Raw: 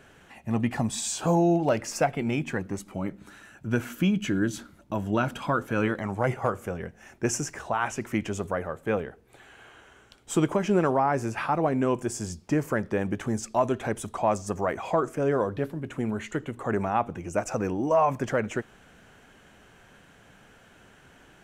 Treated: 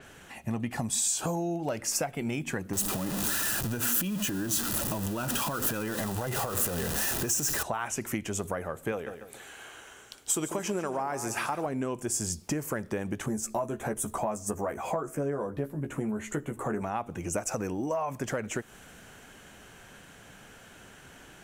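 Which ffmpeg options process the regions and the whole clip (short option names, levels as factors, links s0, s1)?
-filter_complex "[0:a]asettb=1/sr,asplit=3[s0][s1][s2];[s0]atrim=end=2.734[s3];[s1]atrim=start=2.73:end=7.63,asetpts=PTS-STARTPTS,afade=t=in:d=0.004:c=qsin,afade=t=out:st=4.896:d=0.004:c=qsin,aeval=exprs='val(0)+0.5*0.0355*sgn(val(0))':c=same,asuperstop=centerf=2200:order=8:qfactor=7.8,acompressor=threshold=0.0398:ratio=6:attack=3.2:release=140:knee=1:detection=peak[s4];[s2]atrim=start=7.626[s5];[s3][s4]acrossfade=d=0.004:c1=hsin:c2=qsin[s6];[s6][s5]acrossfade=d=0.004:c1=qsin:c2=hsin,asettb=1/sr,asplit=3[s7][s8][s9];[s7]atrim=end=8.924[s10];[s8]atrim=start=8.92:end=11.66,asetpts=PTS-STARTPTS,afade=t=in:d=0.004:c=qsin,afade=t=out:st=2.736:d=0.004:c=qsin,bass=f=250:g=-6,treble=f=4000:g=4,aecho=1:1:144|288|432:0.224|0.0716|0.0229,atrim=end_sample=120834[s11];[s9]atrim=start=11.656[s12];[s10][s11]acrossfade=d=0.004:c1=hsin:c2=qsin[s13];[s13][s12]acrossfade=d=0.004:c1=qsin:c2=hsin,asettb=1/sr,asplit=3[s14][s15][s16];[s14]atrim=end=13.264[s17];[s15]atrim=start=13.26:end=16.82,asetpts=PTS-STARTPTS,afade=t=in:d=0.004:c=qsin,afade=t=out:st=3.556:d=0.004:c=qsin,equalizer=f=3800:t=o:w=1.7:g=-9.5,asplit=2[s18][s19];[s19]adelay=14,volume=0.596[s20];[s18][s20]amix=inputs=2:normalize=0,atrim=end_sample=156996[s21];[s16]atrim=start=16.816[s22];[s17][s21]acrossfade=d=0.004:c1=hsin:c2=qsin[s23];[s23][s22]acrossfade=d=0.004:c1=qsin:c2=hsin,highshelf=f=5000:g=9,acompressor=threshold=0.0282:ratio=6,adynamicequalizer=threshold=0.00316:dfrequency=7000:dqfactor=0.7:tfrequency=7000:tqfactor=0.7:attack=5:release=100:ratio=0.375:range=3:mode=boostabove:tftype=highshelf,volume=1.33"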